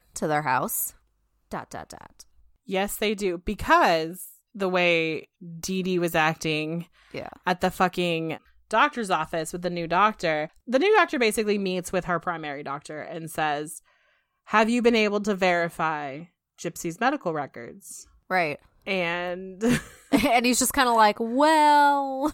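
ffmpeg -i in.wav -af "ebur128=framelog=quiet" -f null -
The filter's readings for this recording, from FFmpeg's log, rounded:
Integrated loudness:
  I:         -24.0 LUFS
  Threshold: -34.9 LUFS
Loudness range:
  LRA:         5.7 LU
  Threshold: -45.4 LUFS
  LRA low:   -29.0 LUFS
  LRA high:  -23.3 LUFS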